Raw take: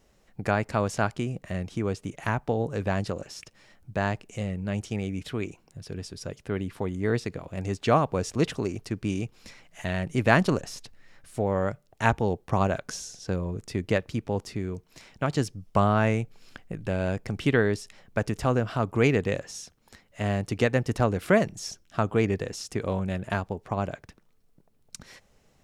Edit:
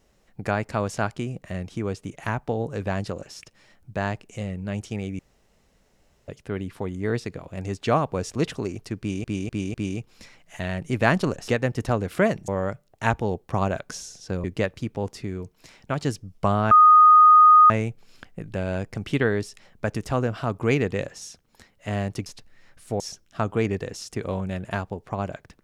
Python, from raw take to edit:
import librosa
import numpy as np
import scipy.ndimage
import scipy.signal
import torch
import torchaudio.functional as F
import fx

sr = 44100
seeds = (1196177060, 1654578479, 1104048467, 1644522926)

y = fx.edit(x, sr, fx.room_tone_fill(start_s=5.19, length_s=1.09),
    fx.repeat(start_s=8.99, length_s=0.25, count=4),
    fx.swap(start_s=10.73, length_s=0.74, other_s=20.59, other_length_s=1.0),
    fx.cut(start_s=13.43, length_s=0.33),
    fx.insert_tone(at_s=16.03, length_s=0.99, hz=1240.0, db=-9.0), tone=tone)